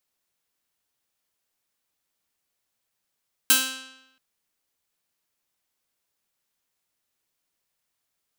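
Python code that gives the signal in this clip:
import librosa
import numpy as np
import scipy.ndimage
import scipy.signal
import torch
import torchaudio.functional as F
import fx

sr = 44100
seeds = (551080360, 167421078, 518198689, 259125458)

y = fx.pluck(sr, length_s=0.68, note=60, decay_s=0.91, pick=0.44, brightness='bright')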